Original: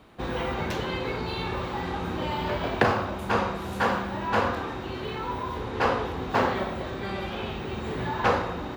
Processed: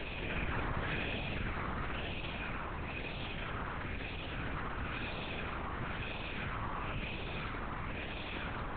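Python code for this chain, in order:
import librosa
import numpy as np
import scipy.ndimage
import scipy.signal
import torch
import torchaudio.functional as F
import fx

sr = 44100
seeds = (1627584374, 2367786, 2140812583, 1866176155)

y = scipy.signal.sosfilt(scipy.signal.cheby2(4, 60, [220.0, 630.0], 'bandstop', fs=sr, output='sos'), x)
y = fx.sample_hold(y, sr, seeds[0], rate_hz=2500.0, jitter_pct=0)
y = fx.wah_lfo(y, sr, hz=5.9, low_hz=450.0, high_hz=2400.0, q=2.6)
y = np.abs(y)
y = fx.paulstretch(y, sr, seeds[1], factor=5.9, window_s=0.1, from_s=6.28)
y = fx.lpc_vocoder(y, sr, seeds[2], excitation='whisper', order=8)
y = fx.env_flatten(y, sr, amount_pct=70)
y = y * 10.0 ** (1.0 / 20.0)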